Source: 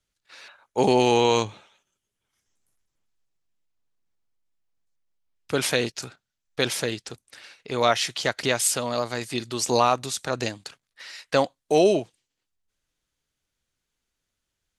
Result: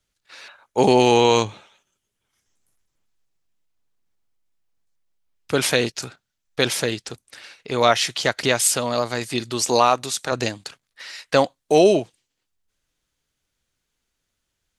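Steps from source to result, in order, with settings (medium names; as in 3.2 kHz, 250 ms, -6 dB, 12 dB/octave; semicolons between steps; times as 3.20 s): 9.62–10.32 s: bass shelf 160 Hz -9 dB; trim +4 dB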